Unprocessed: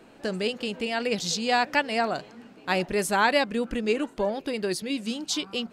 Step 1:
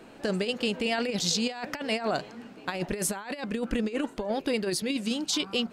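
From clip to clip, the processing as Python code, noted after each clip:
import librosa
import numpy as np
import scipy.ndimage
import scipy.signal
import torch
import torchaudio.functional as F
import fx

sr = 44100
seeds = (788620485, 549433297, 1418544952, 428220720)

y = fx.over_compress(x, sr, threshold_db=-28.0, ratio=-0.5)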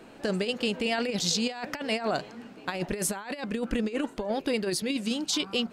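y = x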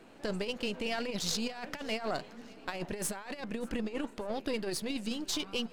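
y = np.where(x < 0.0, 10.0 ** (-7.0 / 20.0) * x, x)
y = fx.echo_feedback(y, sr, ms=585, feedback_pct=41, wet_db=-23)
y = y * librosa.db_to_amplitude(-3.5)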